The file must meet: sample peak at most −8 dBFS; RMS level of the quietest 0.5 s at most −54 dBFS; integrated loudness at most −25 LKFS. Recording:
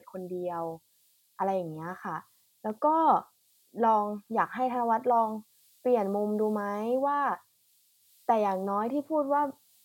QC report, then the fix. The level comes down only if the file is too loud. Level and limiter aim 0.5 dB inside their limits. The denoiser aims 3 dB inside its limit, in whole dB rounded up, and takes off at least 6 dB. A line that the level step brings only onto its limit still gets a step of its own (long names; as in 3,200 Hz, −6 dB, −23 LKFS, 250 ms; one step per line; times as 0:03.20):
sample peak −11.5 dBFS: in spec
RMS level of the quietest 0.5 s −67 dBFS: in spec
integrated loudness −29.0 LKFS: in spec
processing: no processing needed